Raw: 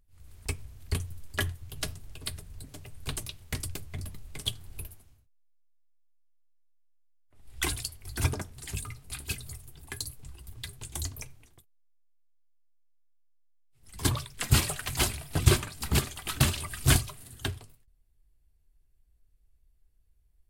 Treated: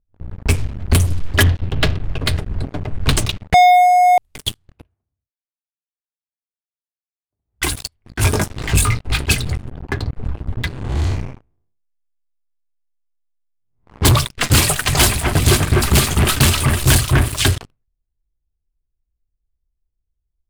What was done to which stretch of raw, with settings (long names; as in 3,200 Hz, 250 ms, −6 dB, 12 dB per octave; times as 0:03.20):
0:01.43–0:02.04: low-pass filter 4,200 Hz 24 dB per octave
0:03.54–0:04.18: beep over 722 Hz −11 dBFS
0:04.72–0:07.61: high-pass filter 57 Hz
0:08.17–0:09.17: double-tracking delay 19 ms −3 dB
0:09.71–0:10.15: high-frequency loss of the air 190 metres
0:10.68–0:14.02: spectrum smeared in time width 215 ms
0:14.67–0:17.58: delay that swaps between a low-pass and a high-pass 251 ms, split 2,300 Hz, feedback 54%, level −5 dB
whole clip: low-pass that shuts in the quiet parts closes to 750 Hz, open at −27.5 dBFS; speech leveller 0.5 s; leveller curve on the samples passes 5; level −5.5 dB